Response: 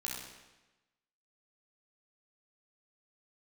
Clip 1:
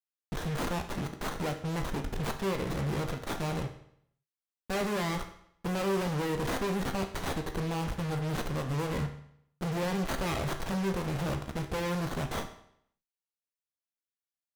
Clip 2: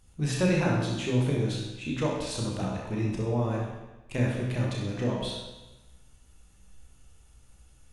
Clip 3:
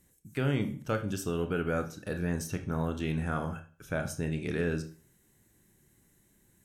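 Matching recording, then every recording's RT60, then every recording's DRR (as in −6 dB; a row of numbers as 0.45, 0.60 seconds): 2; 0.70, 1.1, 0.40 seconds; 5.5, −3.5, 6.5 decibels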